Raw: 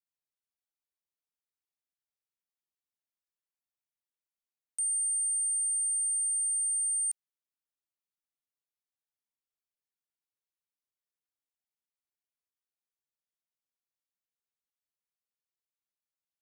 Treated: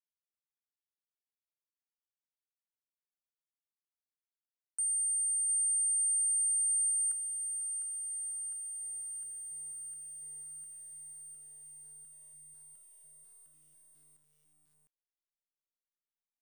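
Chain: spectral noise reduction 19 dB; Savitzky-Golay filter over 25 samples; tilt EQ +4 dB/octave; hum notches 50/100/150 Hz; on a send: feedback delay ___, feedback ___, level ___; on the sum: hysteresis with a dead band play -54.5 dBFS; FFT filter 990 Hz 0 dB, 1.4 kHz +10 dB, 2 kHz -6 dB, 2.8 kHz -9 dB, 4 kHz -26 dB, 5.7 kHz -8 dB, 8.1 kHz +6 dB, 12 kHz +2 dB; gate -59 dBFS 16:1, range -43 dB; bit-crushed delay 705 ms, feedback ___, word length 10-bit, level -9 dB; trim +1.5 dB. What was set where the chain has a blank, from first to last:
498 ms, 51%, -15 dB, 80%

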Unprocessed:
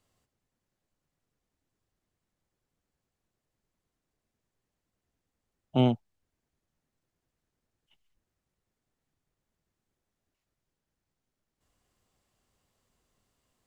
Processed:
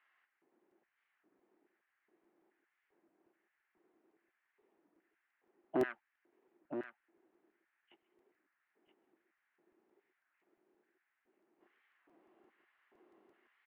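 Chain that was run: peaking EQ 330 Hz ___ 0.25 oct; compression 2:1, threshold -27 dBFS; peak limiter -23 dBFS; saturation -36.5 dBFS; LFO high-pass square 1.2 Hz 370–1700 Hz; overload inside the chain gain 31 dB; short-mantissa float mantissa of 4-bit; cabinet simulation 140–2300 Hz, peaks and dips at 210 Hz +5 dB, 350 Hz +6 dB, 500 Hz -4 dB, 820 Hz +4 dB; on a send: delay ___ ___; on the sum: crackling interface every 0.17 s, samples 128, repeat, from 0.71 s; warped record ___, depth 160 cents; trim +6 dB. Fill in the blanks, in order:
+3.5 dB, 976 ms, -8.5 dB, 33 1/3 rpm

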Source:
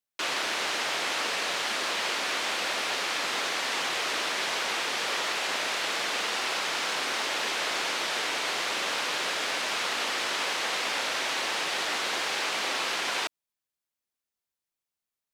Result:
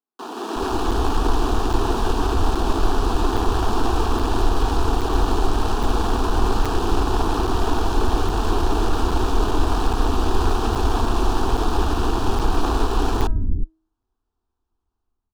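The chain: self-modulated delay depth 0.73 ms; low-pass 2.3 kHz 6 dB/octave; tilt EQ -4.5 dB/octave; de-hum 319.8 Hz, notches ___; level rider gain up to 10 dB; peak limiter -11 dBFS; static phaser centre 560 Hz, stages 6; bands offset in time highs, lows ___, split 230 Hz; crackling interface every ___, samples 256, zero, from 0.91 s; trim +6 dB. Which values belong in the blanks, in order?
6, 360 ms, 0.82 s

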